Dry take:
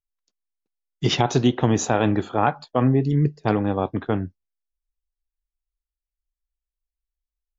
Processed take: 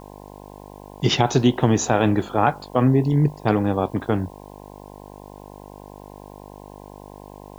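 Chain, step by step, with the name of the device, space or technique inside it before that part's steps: video cassette with head-switching buzz (buzz 50 Hz, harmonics 21, -43 dBFS -1 dB/oct; white noise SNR 36 dB); gain +1.5 dB

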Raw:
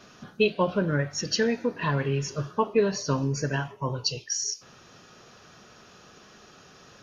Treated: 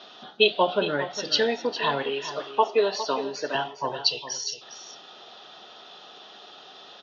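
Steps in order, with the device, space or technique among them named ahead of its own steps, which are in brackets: 2.03–3.55 HPF 290 Hz 12 dB/oct; phone earpiece (speaker cabinet 500–4200 Hz, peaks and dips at 510 Hz -5 dB, 760 Hz +5 dB, 1100 Hz -6 dB, 1600 Hz -8 dB, 2300 Hz -9 dB, 3500 Hz +10 dB); echo 0.408 s -12 dB; gain +8 dB

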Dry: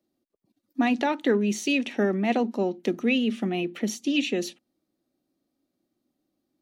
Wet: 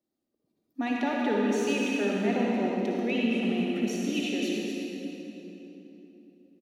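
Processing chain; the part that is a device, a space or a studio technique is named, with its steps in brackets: cave (echo 0.245 s -8 dB; reverb RT60 3.5 s, pre-delay 50 ms, DRR -3 dB); gain -8 dB

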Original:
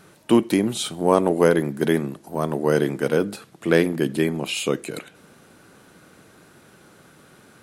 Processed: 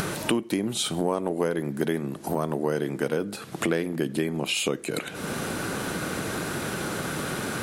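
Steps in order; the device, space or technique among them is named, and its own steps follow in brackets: upward and downward compression (upward compressor, threshold -25 dBFS; compressor 5:1, threshold -32 dBFS, peak gain reduction 19 dB); gain +8 dB

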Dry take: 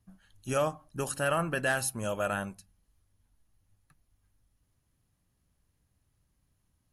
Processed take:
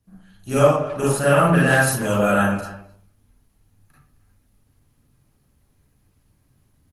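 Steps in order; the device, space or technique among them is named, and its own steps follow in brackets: 1.1–1.93 dynamic EQ 170 Hz, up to +8 dB, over -49 dBFS, Q 7.9; speakerphone in a meeting room (reverb RT60 0.60 s, pre-delay 33 ms, DRR -7.5 dB; speakerphone echo 0.26 s, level -16 dB; AGC gain up to 4 dB; gain +1.5 dB; Opus 20 kbps 48000 Hz)

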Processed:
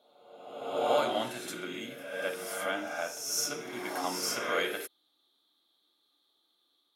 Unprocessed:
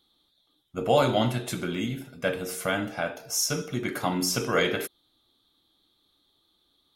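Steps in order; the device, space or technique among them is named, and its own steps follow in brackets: ghost voice (reverse; reverb RT60 1.3 s, pre-delay 35 ms, DRR 1.5 dB; reverse; HPF 360 Hz 12 dB/oct); gain -6.5 dB

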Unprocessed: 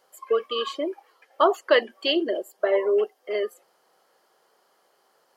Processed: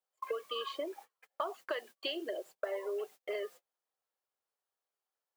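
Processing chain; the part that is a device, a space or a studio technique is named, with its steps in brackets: baby monitor (BPF 430–4400 Hz; compressor 8:1, threshold -37 dBFS, peak gain reduction 22 dB; white noise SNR 22 dB; gate -53 dBFS, range -33 dB); HPF 180 Hz 12 dB/oct; gain +2 dB

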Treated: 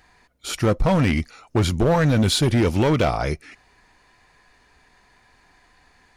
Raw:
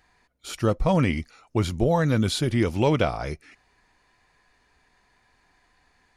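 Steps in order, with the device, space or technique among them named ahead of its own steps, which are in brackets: limiter into clipper (limiter -14.5 dBFS, peak gain reduction 4 dB; hard clip -20.5 dBFS, distortion -13 dB); gain +7 dB

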